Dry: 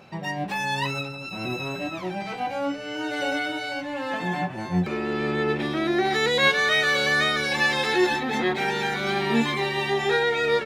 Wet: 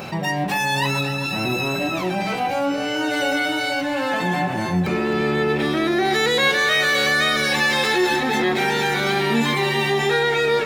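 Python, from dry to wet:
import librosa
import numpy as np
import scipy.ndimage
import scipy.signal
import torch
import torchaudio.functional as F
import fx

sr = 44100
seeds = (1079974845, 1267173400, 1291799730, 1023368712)

y = fx.high_shelf(x, sr, hz=10000.0, db=12.0)
y = fx.echo_alternate(y, sr, ms=130, hz=1600.0, feedback_pct=75, wet_db=-12)
y = fx.env_flatten(y, sr, amount_pct=50)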